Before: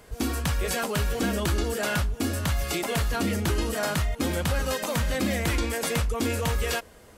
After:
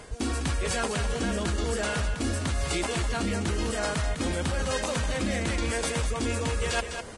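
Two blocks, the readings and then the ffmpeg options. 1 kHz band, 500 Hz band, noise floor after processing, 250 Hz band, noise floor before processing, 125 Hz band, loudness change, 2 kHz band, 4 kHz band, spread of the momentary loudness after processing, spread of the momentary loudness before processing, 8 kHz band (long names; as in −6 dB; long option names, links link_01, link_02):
−1.0 dB, −1.0 dB, −36 dBFS, −2.0 dB, −50 dBFS, −2.0 dB, −1.5 dB, −1.0 dB, −1.0 dB, 1 LU, 2 LU, −0.5 dB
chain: -af "areverse,acompressor=threshold=-34dB:ratio=12,areverse,aecho=1:1:203:0.398,volume=8.5dB" -ar 22050 -c:a libvorbis -b:a 32k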